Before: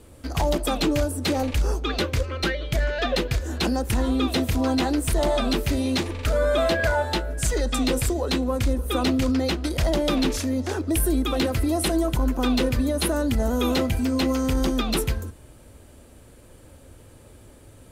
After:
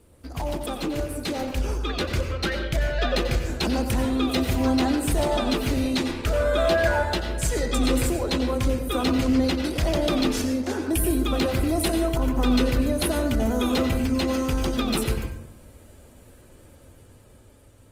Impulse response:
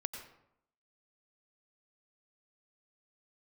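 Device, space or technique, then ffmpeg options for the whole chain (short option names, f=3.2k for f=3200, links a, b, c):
speakerphone in a meeting room: -filter_complex "[1:a]atrim=start_sample=2205[a];[0:a][a]afir=irnorm=-1:irlink=0,dynaudnorm=f=510:g=7:m=5dB,volume=-5dB" -ar 48000 -c:a libopus -b:a 24k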